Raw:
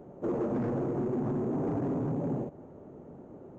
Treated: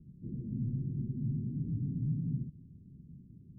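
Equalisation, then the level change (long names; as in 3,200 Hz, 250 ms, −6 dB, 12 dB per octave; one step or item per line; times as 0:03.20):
inverse Chebyshev low-pass filter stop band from 810 Hz, stop band 70 dB
+3.0 dB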